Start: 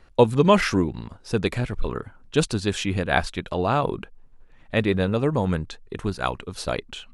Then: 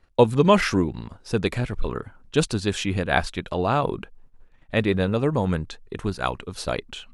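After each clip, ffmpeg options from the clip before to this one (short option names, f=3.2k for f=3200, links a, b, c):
-af "agate=range=-10dB:threshold=-48dB:ratio=16:detection=peak"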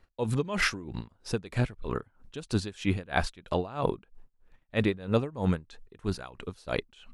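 -af "aeval=exprs='val(0)*pow(10,-22*(0.5-0.5*cos(2*PI*3.1*n/s))/20)':c=same"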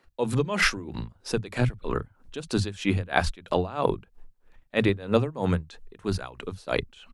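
-filter_complex "[0:a]acrossover=split=160[a][b];[a]adelay=40[c];[c][b]amix=inputs=2:normalize=0,volume=4.5dB"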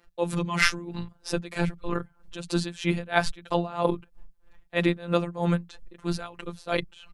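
-af "afftfilt=real='hypot(re,im)*cos(PI*b)':imag='0':win_size=1024:overlap=0.75,volume=3.5dB"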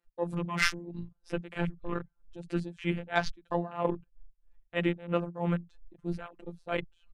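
-af "afwtdn=0.0126,volume=-5dB"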